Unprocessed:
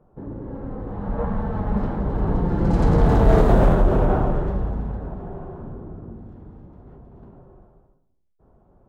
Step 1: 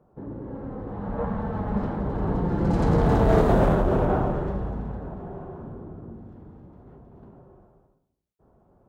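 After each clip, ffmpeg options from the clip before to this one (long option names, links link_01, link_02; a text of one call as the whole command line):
ffmpeg -i in.wav -af "highpass=frequency=79:poles=1,volume=-1.5dB" out.wav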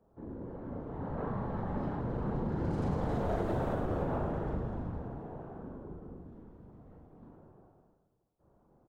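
ffmpeg -i in.wav -af "afftfilt=real='hypot(re,im)*cos(2*PI*random(0))':imag='hypot(re,im)*sin(2*PI*random(1))':win_size=512:overlap=0.75,aecho=1:1:40|104|206.4|370.2|632.4:0.631|0.398|0.251|0.158|0.1,acompressor=threshold=-27dB:ratio=4,volume=-2.5dB" out.wav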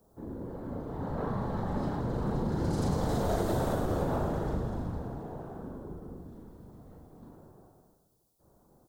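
ffmpeg -i in.wav -af "aexciter=amount=3.5:drive=7.4:freq=3700,volume=3dB" out.wav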